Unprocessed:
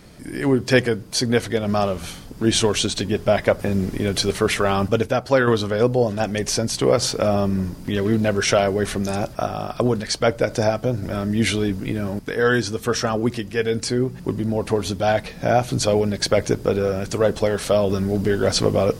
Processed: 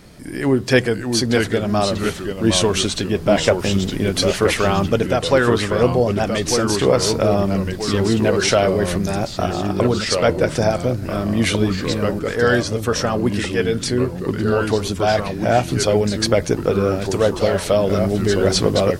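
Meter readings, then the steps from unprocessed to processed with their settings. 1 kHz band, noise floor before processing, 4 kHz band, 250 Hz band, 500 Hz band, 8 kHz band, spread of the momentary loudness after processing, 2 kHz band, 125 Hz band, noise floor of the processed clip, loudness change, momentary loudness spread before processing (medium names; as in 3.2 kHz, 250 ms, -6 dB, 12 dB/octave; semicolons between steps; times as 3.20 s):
+2.5 dB, -38 dBFS, +3.0 dB, +3.0 dB, +2.5 dB, +2.0 dB, 5 LU, +2.5 dB, +3.0 dB, -29 dBFS, +2.5 dB, 6 LU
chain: ever faster or slower copies 548 ms, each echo -2 st, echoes 2, each echo -6 dB; trim +1.5 dB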